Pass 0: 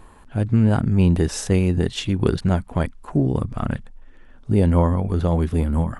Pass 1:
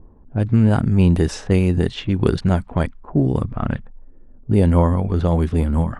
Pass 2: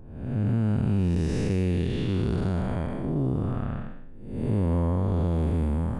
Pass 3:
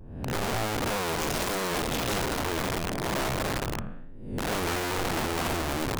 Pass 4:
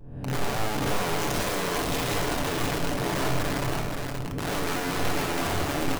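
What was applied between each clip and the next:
level-controlled noise filter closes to 360 Hz, open at -15 dBFS; trim +2 dB
spectral blur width 368 ms; compression 3:1, threshold -21 dBFS, peak gain reduction 7 dB; trim -1 dB
vibrato 1.5 Hz 92 cents; integer overflow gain 24 dB
delay 525 ms -4.5 dB; on a send at -4 dB: reverberation RT60 0.55 s, pre-delay 7 ms; on the sum: trim -1.5 dB

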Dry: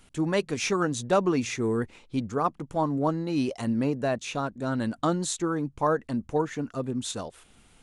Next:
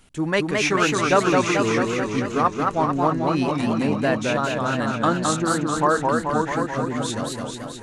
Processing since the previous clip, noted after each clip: dynamic bell 1.8 kHz, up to +8 dB, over -43 dBFS, Q 0.81; modulated delay 218 ms, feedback 68%, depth 162 cents, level -3 dB; trim +2 dB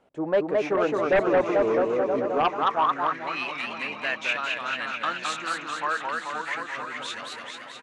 delay 969 ms -12.5 dB; band-pass sweep 590 Hz -> 2.4 kHz, 2.27–3.38 s; sine folder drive 7 dB, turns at -10.5 dBFS; trim -5 dB

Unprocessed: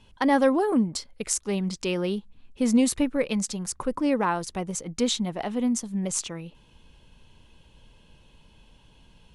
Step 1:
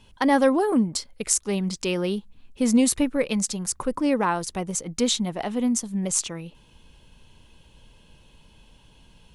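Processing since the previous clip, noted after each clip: treble shelf 7 kHz +6 dB; trim +1.5 dB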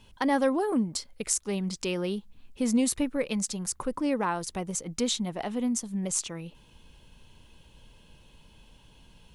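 in parallel at -1.5 dB: compression, threshold -32 dBFS, peak gain reduction 17 dB; on the sum: bit crusher 12-bit; trim -7 dB

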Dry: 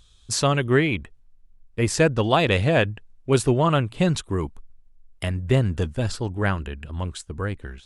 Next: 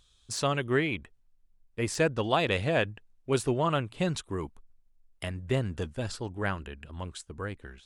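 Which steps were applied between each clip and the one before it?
bass shelf 190 Hz -6 dB; de-esser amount 45%; trim -6 dB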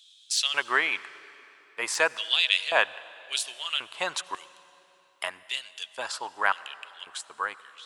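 LFO high-pass square 0.92 Hz 970–3200 Hz; reverberation RT60 3.4 s, pre-delay 69 ms, DRR 18 dB; trim +5.5 dB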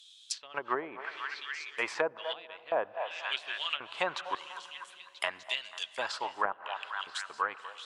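repeats whose band climbs or falls 246 ms, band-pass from 730 Hz, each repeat 0.7 oct, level -9 dB; low-pass that closes with the level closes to 590 Hz, closed at -22 dBFS

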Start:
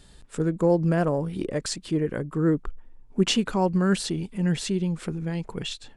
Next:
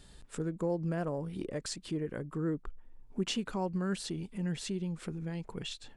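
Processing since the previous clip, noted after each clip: compression 1.5:1, threshold -40 dBFS, peak gain reduction 9 dB; trim -3.5 dB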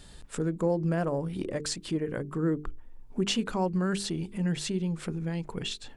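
hum notches 50/100/150/200/250/300/350/400/450 Hz; trim +6 dB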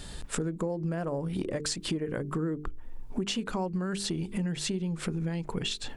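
compression 10:1, threshold -36 dBFS, peak gain reduction 14.5 dB; trim +8 dB

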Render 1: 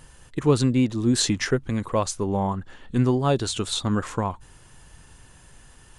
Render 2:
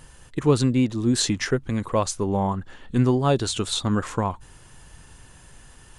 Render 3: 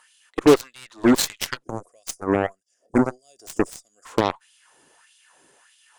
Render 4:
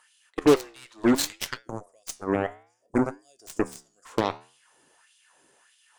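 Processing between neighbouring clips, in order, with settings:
gain riding within 4 dB 2 s
LFO high-pass sine 1.6 Hz 300–3300 Hz; time-frequency box 1.63–4.06 s, 750–4700 Hz -28 dB; Chebyshev shaper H 4 -21 dB, 7 -14 dB, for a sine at -10 dBFS; trim +2 dB
flange 0.62 Hz, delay 7.9 ms, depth 9 ms, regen -81%

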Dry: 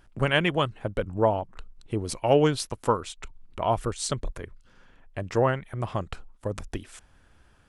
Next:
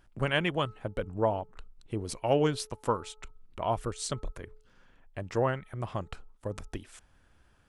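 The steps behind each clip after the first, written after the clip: de-hum 430.9 Hz, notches 3; trim -5 dB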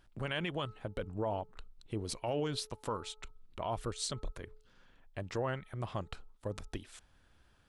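peak limiter -23 dBFS, peak gain reduction 10 dB; peaking EQ 3.9 kHz +5.5 dB 0.71 oct; trim -3 dB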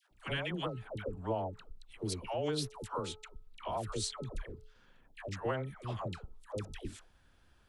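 phase dispersion lows, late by 115 ms, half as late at 740 Hz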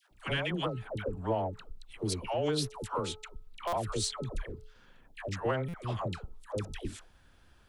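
in parallel at -11 dB: saturation -33 dBFS, distortion -13 dB; on the sum: buffer glitch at 3.67/5.68 s, samples 256, times 9; trim +2.5 dB

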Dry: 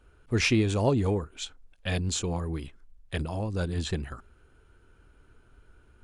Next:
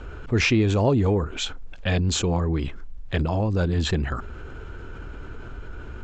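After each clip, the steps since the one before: steep low-pass 7.8 kHz 72 dB/octave; treble shelf 4 kHz -9 dB; level flattener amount 50%; trim +3 dB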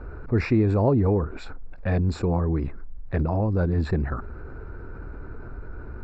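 boxcar filter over 14 samples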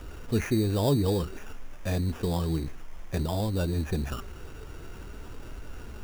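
added noise pink -49 dBFS; sample-rate reducer 4.2 kHz, jitter 0%; flange 0.54 Hz, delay 3 ms, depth 3.9 ms, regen +73%

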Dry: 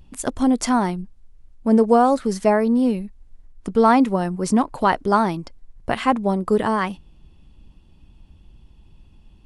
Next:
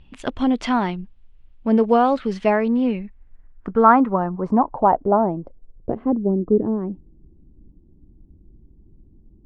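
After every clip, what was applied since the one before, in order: low-pass sweep 3 kHz -> 340 Hz, 2.51–6.33 s; trim -1.5 dB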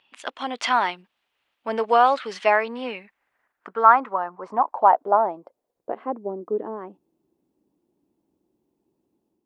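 high-pass 830 Hz 12 dB/octave; level rider gain up to 5.5 dB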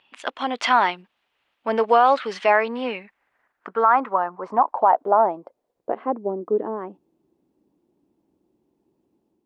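treble shelf 5.4 kHz -8 dB; loudness maximiser +9.5 dB; trim -5.5 dB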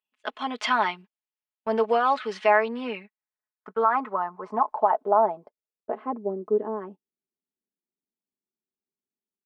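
gate -38 dBFS, range -27 dB; comb 4.7 ms, depth 67%; trim -6 dB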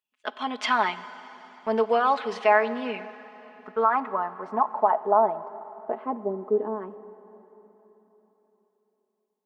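plate-style reverb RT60 3.9 s, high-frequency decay 0.95×, DRR 14 dB

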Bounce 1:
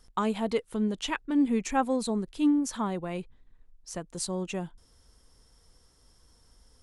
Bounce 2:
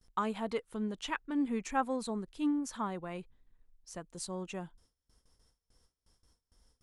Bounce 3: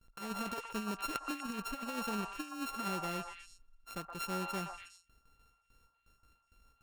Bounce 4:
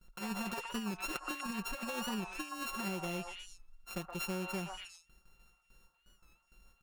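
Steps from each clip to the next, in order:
gate with hold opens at -49 dBFS; dynamic bell 1.3 kHz, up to +6 dB, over -44 dBFS, Q 0.94; trim -8 dB
sorted samples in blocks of 32 samples; compressor with a negative ratio -36 dBFS, ratio -0.5; repeats whose band climbs or falls 121 ms, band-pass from 950 Hz, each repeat 1.4 oct, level -0.5 dB; trim -2 dB
comb 5.5 ms, depth 80%; compression, threshold -36 dBFS, peak gain reduction 6.5 dB; warped record 45 rpm, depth 100 cents; trim +1.5 dB

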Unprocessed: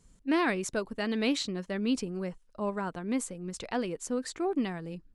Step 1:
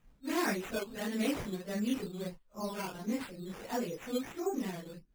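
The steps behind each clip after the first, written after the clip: phase randomisation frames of 100 ms; treble shelf 10 kHz -7.5 dB; decimation with a swept rate 9×, swing 60% 1.5 Hz; trim -4.5 dB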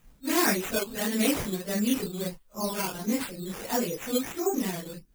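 treble shelf 5.6 kHz +11 dB; trim +6.5 dB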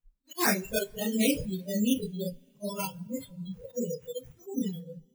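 slow attack 105 ms; spectral noise reduction 30 dB; two-slope reverb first 0.43 s, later 3.8 s, from -18 dB, DRR 19.5 dB

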